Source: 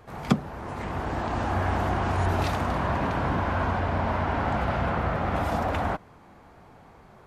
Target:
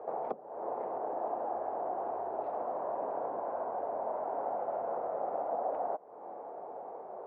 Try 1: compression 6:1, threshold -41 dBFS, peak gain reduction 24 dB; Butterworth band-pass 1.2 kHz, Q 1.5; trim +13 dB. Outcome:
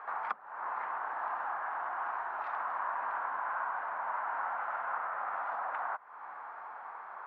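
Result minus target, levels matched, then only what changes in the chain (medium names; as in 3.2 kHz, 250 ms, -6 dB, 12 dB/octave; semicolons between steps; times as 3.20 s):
500 Hz band -13.0 dB
change: Butterworth band-pass 590 Hz, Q 1.5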